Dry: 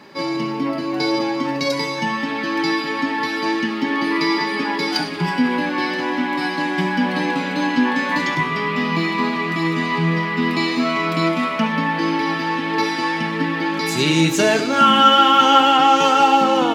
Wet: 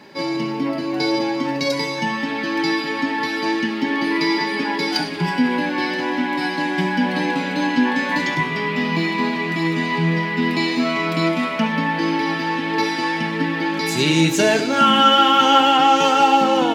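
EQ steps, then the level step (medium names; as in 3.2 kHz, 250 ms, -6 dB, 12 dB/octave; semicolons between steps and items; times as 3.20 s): band-stop 1.2 kHz, Q 5.1; 0.0 dB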